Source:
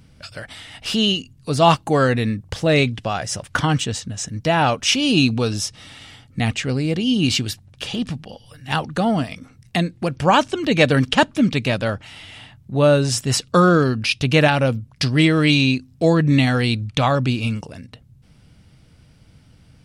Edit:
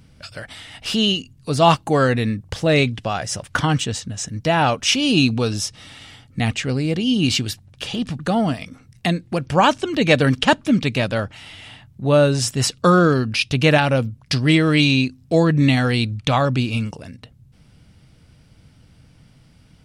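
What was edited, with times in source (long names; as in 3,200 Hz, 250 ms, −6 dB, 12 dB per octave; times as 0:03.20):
0:08.19–0:08.89: remove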